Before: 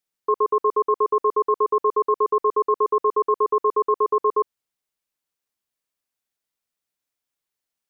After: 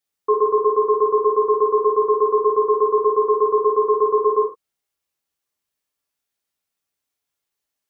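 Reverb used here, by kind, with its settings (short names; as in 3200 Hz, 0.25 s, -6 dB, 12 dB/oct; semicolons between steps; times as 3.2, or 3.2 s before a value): non-linear reverb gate 0.14 s falling, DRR -1.5 dB; gain -1 dB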